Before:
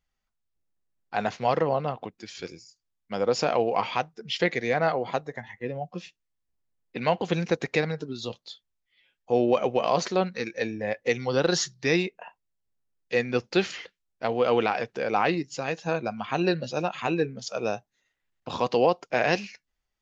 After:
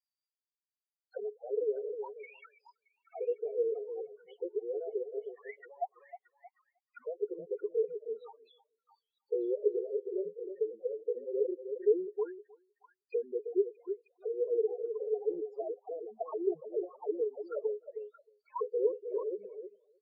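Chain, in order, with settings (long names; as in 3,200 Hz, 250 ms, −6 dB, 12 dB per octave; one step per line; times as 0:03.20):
pitch vibrato 5.6 Hz 39 cents
envelope filter 420–4,800 Hz, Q 18, down, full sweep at −25.5 dBFS
spectral peaks only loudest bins 4
on a send: echo through a band-pass that steps 312 ms, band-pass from 460 Hz, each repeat 1.4 octaves, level −8 dB
on the sum: level +6.5 dB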